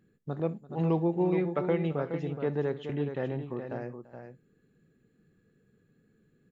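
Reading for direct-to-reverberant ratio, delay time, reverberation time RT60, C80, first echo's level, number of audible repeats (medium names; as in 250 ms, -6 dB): no reverb, 62 ms, no reverb, no reverb, -19.5 dB, 3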